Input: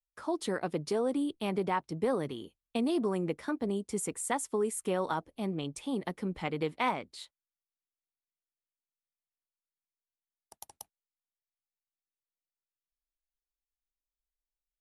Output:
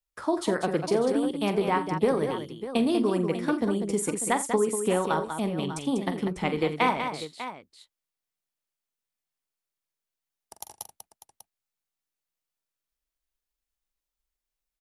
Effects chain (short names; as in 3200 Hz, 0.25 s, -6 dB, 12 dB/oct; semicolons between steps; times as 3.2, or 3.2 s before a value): transient shaper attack +3 dB, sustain -1 dB; on a send: tapped delay 44/84/194/596 ms -11/-18.5/-7.5/-12 dB; on the sum: gain +4.5 dB